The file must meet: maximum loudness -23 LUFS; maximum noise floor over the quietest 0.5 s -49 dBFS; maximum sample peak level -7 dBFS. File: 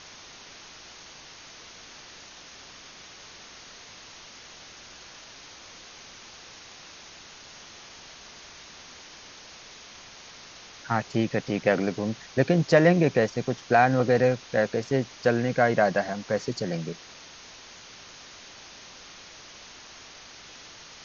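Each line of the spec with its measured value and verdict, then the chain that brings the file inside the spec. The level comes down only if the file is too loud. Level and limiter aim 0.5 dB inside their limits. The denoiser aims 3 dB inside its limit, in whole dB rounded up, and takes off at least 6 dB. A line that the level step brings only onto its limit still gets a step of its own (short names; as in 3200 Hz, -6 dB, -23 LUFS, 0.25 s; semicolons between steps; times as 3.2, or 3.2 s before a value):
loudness -24.5 LUFS: OK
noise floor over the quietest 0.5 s -47 dBFS: fail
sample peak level -5.0 dBFS: fail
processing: denoiser 6 dB, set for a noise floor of -47 dBFS; limiter -7.5 dBFS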